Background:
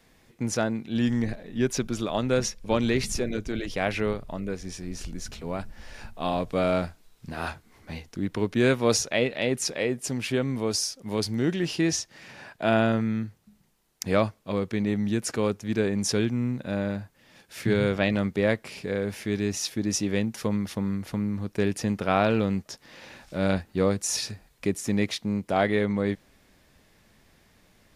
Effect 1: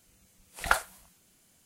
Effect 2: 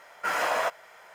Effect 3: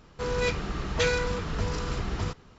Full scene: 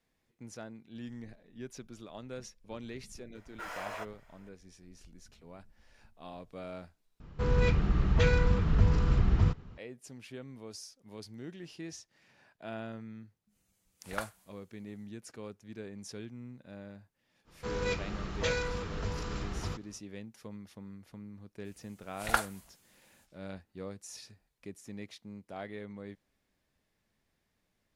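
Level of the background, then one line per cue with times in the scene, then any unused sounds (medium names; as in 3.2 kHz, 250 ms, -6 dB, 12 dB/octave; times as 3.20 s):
background -19 dB
3.35 s: add 2 -14.5 dB
7.20 s: replace with 3 -4 dB + tone controls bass +11 dB, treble -9 dB
13.47 s: add 1 -12.5 dB, fades 0.10 s
17.44 s: add 3 -6.5 dB, fades 0.05 s
21.63 s: add 1 -3 dB, fades 0.05 s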